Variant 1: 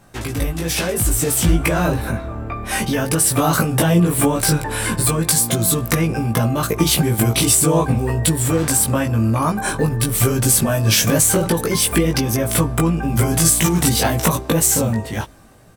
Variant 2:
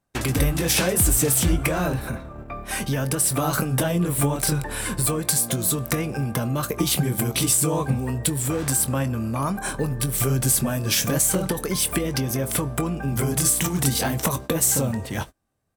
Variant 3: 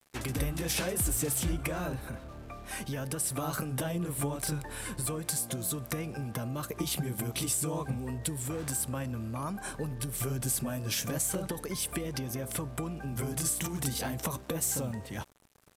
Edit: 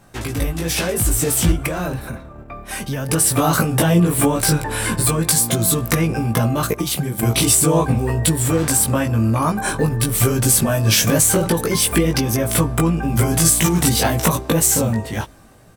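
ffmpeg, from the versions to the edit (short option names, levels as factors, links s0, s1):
-filter_complex "[1:a]asplit=2[s0][s1];[0:a]asplit=3[s2][s3][s4];[s2]atrim=end=1.522[s5];[s0]atrim=start=1.518:end=3.092[s6];[s3]atrim=start=3.088:end=6.742[s7];[s1]atrim=start=6.738:end=7.232[s8];[s4]atrim=start=7.228[s9];[s5][s6]acrossfade=d=0.004:c1=hsin:c2=hsin[s10];[s10][s7]acrossfade=d=0.004:c1=hsin:c2=hsin[s11];[s11][s8]acrossfade=d=0.004:c1=hsin:c2=hsin[s12];[s12][s9]acrossfade=d=0.004:c1=hsin:c2=hsin"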